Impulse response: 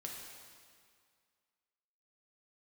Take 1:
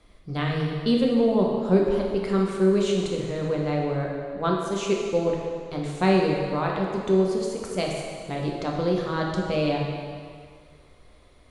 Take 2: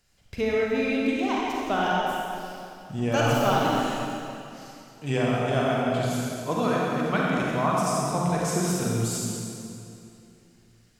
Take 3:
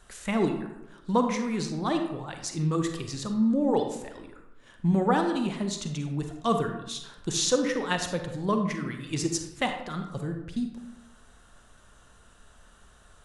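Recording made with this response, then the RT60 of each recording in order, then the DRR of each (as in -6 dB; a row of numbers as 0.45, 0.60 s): 1; 2.0, 2.8, 0.90 s; -1.5, -5.0, 5.0 dB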